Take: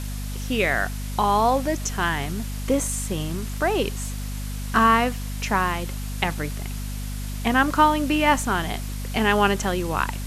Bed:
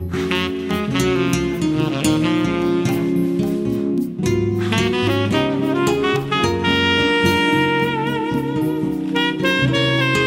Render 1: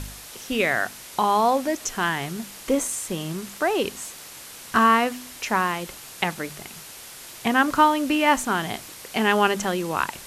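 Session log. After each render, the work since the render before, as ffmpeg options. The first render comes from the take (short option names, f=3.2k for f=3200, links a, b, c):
-af "bandreject=f=50:t=h:w=4,bandreject=f=100:t=h:w=4,bandreject=f=150:t=h:w=4,bandreject=f=200:t=h:w=4,bandreject=f=250:t=h:w=4"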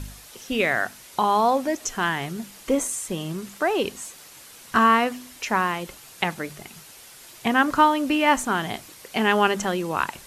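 -af "afftdn=nr=6:nf=-42"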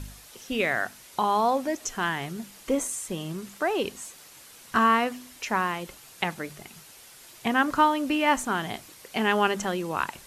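-af "volume=-3.5dB"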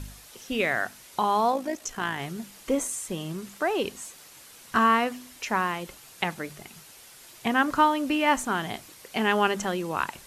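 -filter_complex "[0:a]asplit=3[a][b][c];[a]afade=t=out:st=1.51:d=0.02[d];[b]tremolo=f=56:d=0.519,afade=t=in:st=1.51:d=0.02,afade=t=out:st=2.18:d=0.02[e];[c]afade=t=in:st=2.18:d=0.02[f];[d][e][f]amix=inputs=3:normalize=0"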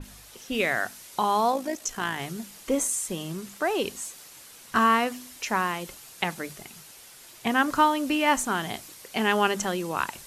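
-af "bandreject=f=50:t=h:w=6,bandreject=f=100:t=h:w=6,bandreject=f=150:t=h:w=6,adynamicequalizer=threshold=0.00794:dfrequency=3900:dqfactor=0.7:tfrequency=3900:tqfactor=0.7:attack=5:release=100:ratio=0.375:range=2.5:mode=boostabove:tftype=highshelf"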